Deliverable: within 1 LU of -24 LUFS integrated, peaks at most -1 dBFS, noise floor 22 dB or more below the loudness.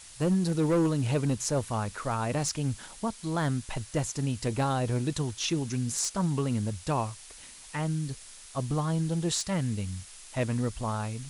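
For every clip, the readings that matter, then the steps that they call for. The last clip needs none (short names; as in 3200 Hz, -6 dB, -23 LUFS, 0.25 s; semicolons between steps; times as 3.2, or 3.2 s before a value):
clipped 0.7%; flat tops at -20.0 dBFS; noise floor -49 dBFS; noise floor target -52 dBFS; loudness -30.0 LUFS; peak -20.0 dBFS; loudness target -24.0 LUFS
-> clip repair -20 dBFS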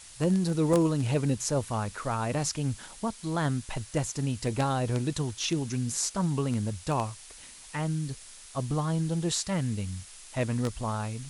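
clipped 0.0%; noise floor -49 dBFS; noise floor target -52 dBFS
-> denoiser 6 dB, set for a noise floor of -49 dBFS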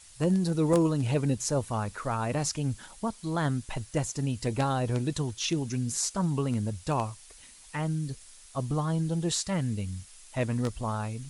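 noise floor -52 dBFS; loudness -30.0 LUFS; peak -11.0 dBFS; loudness target -24.0 LUFS
-> gain +6 dB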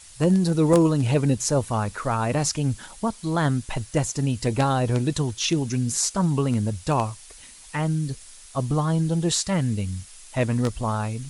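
loudness -24.0 LUFS; peak -5.0 dBFS; noise floor -46 dBFS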